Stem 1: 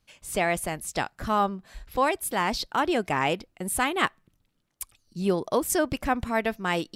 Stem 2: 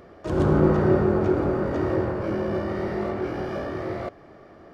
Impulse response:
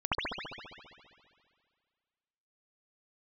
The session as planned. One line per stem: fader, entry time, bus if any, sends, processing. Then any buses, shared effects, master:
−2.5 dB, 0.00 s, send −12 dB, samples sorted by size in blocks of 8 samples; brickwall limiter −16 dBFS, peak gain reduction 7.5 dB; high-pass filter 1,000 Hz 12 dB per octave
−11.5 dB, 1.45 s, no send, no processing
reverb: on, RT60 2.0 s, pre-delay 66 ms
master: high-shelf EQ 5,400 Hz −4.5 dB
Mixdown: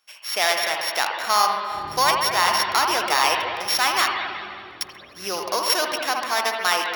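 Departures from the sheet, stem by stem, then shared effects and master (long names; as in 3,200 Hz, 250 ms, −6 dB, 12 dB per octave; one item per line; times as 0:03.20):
stem 1 −2.5 dB → +9.0 dB
stem 2 −11.5 dB → −21.0 dB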